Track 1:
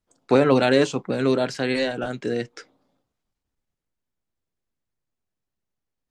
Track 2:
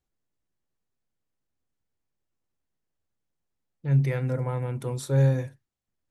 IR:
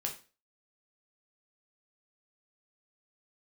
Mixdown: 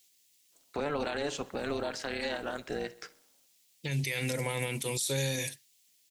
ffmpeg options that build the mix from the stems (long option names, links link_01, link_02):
-filter_complex "[0:a]highpass=frequency=540:poles=1,tremolo=f=290:d=0.71,adelay=450,volume=-1.5dB,asplit=2[link_01][link_02];[link_02]volume=-21dB[link_03];[1:a]highpass=190,acompressor=threshold=-28dB:ratio=6,aexciter=amount=12.5:drive=4.6:freq=2100,volume=2.5dB[link_04];[link_03]aecho=0:1:65|130|195|260|325|390|455|520:1|0.54|0.292|0.157|0.085|0.0459|0.0248|0.0134[link_05];[link_01][link_04][link_05]amix=inputs=3:normalize=0,alimiter=limit=-22.5dB:level=0:latency=1:release=69"